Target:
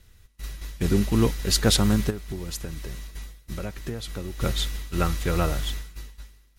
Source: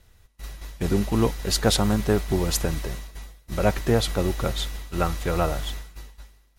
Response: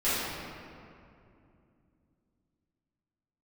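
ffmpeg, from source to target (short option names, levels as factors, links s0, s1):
-filter_complex "[0:a]equalizer=f=740:w=1.1:g=-8,asplit=3[s0][s1][s2];[s0]afade=t=out:st=2.09:d=0.02[s3];[s1]acompressor=threshold=0.0251:ratio=6,afade=t=in:st=2.09:d=0.02,afade=t=out:st=4.4:d=0.02[s4];[s2]afade=t=in:st=4.4:d=0.02[s5];[s3][s4][s5]amix=inputs=3:normalize=0,volume=1.26"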